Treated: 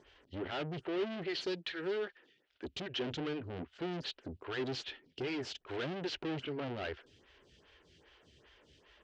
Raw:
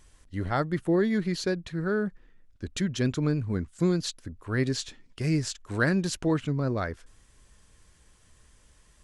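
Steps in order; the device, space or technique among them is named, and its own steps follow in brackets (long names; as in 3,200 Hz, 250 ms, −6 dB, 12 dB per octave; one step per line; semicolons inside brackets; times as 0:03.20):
0:01.35–0:02.65: spectral tilt +4 dB per octave
vibe pedal into a guitar amplifier (phaser with staggered stages 2.5 Hz; tube saturation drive 41 dB, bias 0.3; loudspeaker in its box 96–4,600 Hz, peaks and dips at 110 Hz −7 dB, 200 Hz −9 dB, 390 Hz +6 dB, 1,100 Hz −6 dB, 3,000 Hz +7 dB)
level +5.5 dB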